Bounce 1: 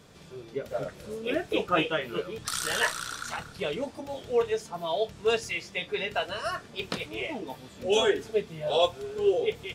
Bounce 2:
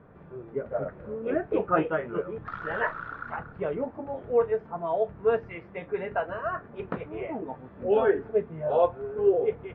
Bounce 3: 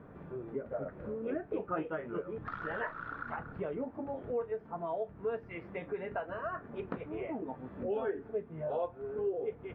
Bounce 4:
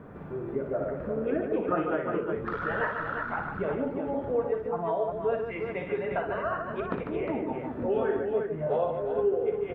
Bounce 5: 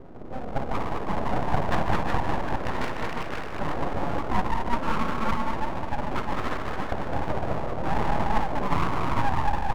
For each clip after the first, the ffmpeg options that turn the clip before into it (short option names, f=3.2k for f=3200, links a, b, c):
-af "lowpass=f=1.6k:w=0.5412,lowpass=f=1.6k:w=1.3066,volume=2dB"
-af "equalizer=f=270:t=o:w=0.64:g=4.5,acompressor=threshold=-38dB:ratio=2.5"
-af "aecho=1:1:59|147|357:0.447|0.473|0.501,volume=6dB"
-af "adynamicsmooth=sensitivity=0.5:basefreq=560,aecho=1:1:210|378|512.4|619.9|705.9:0.631|0.398|0.251|0.158|0.1,aeval=exprs='abs(val(0))':c=same,volume=5.5dB"